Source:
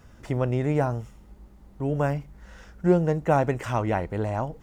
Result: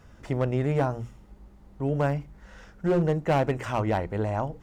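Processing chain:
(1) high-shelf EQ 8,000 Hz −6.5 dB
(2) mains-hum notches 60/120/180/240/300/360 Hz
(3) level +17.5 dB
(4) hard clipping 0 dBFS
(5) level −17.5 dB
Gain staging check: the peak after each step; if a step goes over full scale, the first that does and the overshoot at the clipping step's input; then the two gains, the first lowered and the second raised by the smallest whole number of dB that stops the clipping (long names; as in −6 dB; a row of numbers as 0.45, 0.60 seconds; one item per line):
−8.0, −9.0, +8.5, 0.0, −17.5 dBFS
step 3, 8.5 dB
step 3 +8.5 dB, step 5 −8.5 dB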